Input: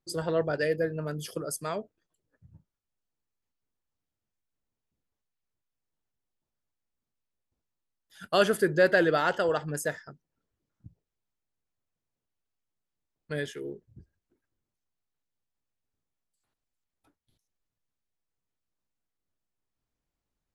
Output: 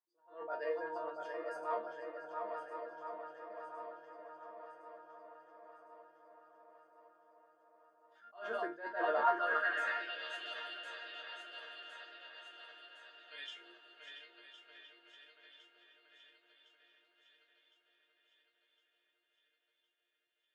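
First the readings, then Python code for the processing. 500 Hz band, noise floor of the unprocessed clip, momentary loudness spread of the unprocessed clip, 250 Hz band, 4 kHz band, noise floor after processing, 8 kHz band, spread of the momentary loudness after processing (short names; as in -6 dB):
-12.5 dB, under -85 dBFS, 15 LU, -18.5 dB, -7.0 dB, -83 dBFS, under -25 dB, 24 LU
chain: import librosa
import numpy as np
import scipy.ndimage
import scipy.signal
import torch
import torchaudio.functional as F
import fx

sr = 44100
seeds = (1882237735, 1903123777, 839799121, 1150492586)

y = fx.reverse_delay_fb(x, sr, ms=530, feedback_pct=74, wet_db=-8.5)
y = scipy.signal.sosfilt(scipy.signal.butter(2, 280.0, 'highpass', fs=sr, output='sos'), y)
y = fx.air_absorb(y, sr, metres=51.0)
y = fx.hum_notches(y, sr, base_hz=60, count=8)
y = fx.resonator_bank(y, sr, root=58, chord='sus4', decay_s=0.22)
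y = fx.echo_wet_lowpass(y, sr, ms=683, feedback_pct=61, hz=3300.0, wet_db=-5.5)
y = fx.filter_sweep_bandpass(y, sr, from_hz=920.0, to_hz=3100.0, start_s=9.22, end_s=10.21, q=2.5)
y = fx.attack_slew(y, sr, db_per_s=150.0)
y = F.gain(torch.from_numpy(y), 16.0).numpy()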